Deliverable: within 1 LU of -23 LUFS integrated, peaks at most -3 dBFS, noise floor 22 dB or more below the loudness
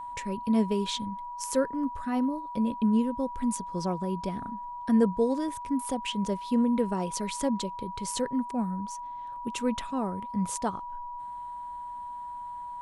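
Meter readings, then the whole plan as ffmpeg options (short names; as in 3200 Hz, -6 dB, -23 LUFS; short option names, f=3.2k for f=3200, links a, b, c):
steady tone 970 Hz; tone level -36 dBFS; loudness -30.5 LUFS; peak -13.0 dBFS; loudness target -23.0 LUFS
-> -af "bandreject=f=970:w=30"
-af "volume=7.5dB"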